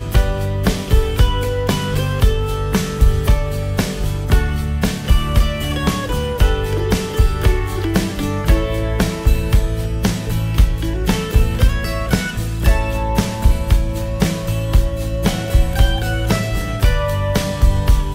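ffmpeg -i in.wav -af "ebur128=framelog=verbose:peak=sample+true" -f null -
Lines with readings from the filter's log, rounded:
Integrated loudness:
  I:         -18.5 LUFS
  Threshold: -28.5 LUFS
Loudness range:
  LRA:         0.7 LU
  Threshold: -38.5 LUFS
  LRA low:   -18.9 LUFS
  LRA high:  -18.2 LUFS
Sample peak:
  Peak:       -1.4 dBFS
True peak:
  Peak:       -1.4 dBFS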